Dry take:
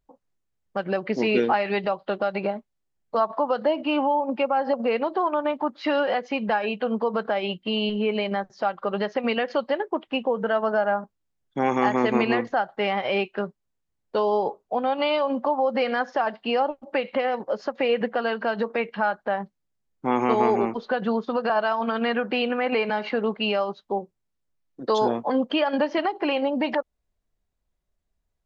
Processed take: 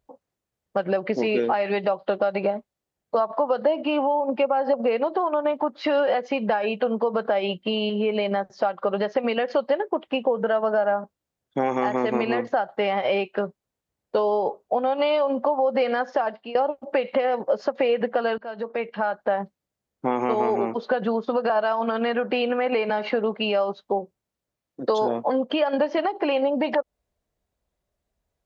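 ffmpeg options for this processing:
ffmpeg -i in.wav -filter_complex "[0:a]asplit=3[link_01][link_02][link_03];[link_01]atrim=end=16.55,asetpts=PTS-STARTPTS,afade=type=out:start_time=15.98:duration=0.57:curve=qsin:silence=0.0749894[link_04];[link_02]atrim=start=16.55:end=18.38,asetpts=PTS-STARTPTS,afade=type=in:duration=0.004:curve=hsin:silence=0.0749894,afade=type=out:start_time=1.826:duration=0.004:curve=hsin:silence=0.0841395[link_05];[link_03]atrim=start=18.38,asetpts=PTS-STARTPTS,afade=type=in:duration=1:silence=0.0841395[link_06];[link_04][link_05][link_06]concat=n=3:v=0:a=1,highpass=46,acompressor=threshold=-26dB:ratio=3,equalizer=frequency=570:width=1.4:gain=5.5,volume=2.5dB" out.wav

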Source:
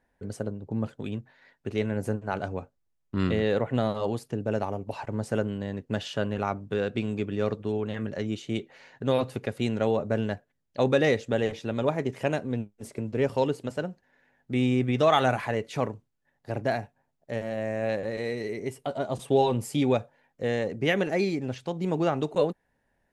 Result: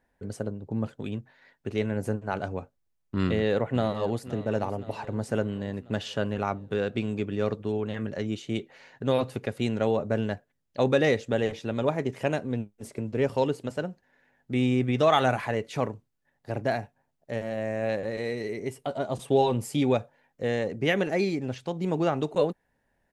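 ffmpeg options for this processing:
ffmpeg -i in.wav -filter_complex "[0:a]asplit=2[link_01][link_02];[link_02]afade=type=in:start_time=3.22:duration=0.01,afade=type=out:start_time=4.25:duration=0.01,aecho=0:1:520|1040|1560|2080|2600|3120:0.16788|0.100728|0.0604369|0.0362622|0.0217573|0.0130544[link_03];[link_01][link_03]amix=inputs=2:normalize=0" out.wav

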